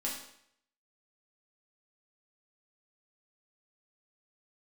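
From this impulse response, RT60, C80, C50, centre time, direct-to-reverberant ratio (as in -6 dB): 0.70 s, 7.5 dB, 4.5 dB, 39 ms, -4.5 dB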